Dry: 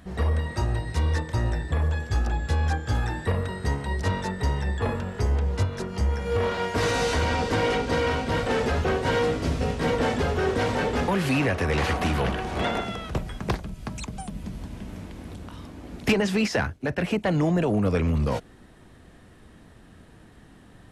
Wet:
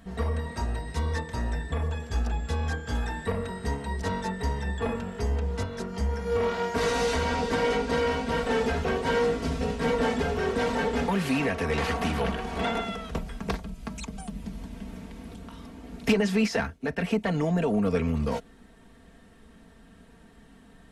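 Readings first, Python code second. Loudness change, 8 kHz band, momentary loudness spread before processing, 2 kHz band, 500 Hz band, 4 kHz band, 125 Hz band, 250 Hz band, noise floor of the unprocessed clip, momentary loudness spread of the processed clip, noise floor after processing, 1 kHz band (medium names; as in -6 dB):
-2.5 dB, -2.5 dB, 12 LU, -2.5 dB, -1.0 dB, -3.0 dB, -5.5 dB, -1.5 dB, -51 dBFS, 12 LU, -53 dBFS, -2.0 dB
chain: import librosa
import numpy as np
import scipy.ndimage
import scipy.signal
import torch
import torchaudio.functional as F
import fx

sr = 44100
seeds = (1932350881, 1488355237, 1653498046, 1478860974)

y = x + 0.65 * np.pad(x, (int(4.4 * sr / 1000.0), 0))[:len(x)]
y = y * librosa.db_to_amplitude(-4.0)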